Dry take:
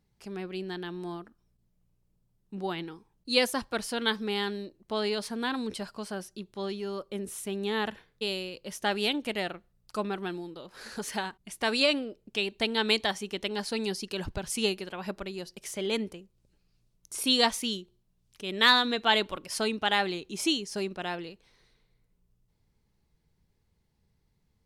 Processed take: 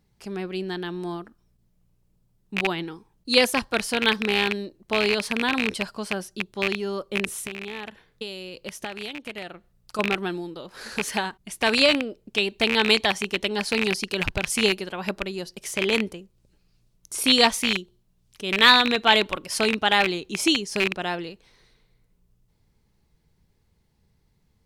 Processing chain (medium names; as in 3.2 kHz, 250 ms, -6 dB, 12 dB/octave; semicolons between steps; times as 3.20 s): rattle on loud lows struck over -39 dBFS, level -16 dBFS; 7.41–9.99 s: compression 6:1, threshold -38 dBFS, peak gain reduction 14.5 dB; trim +6 dB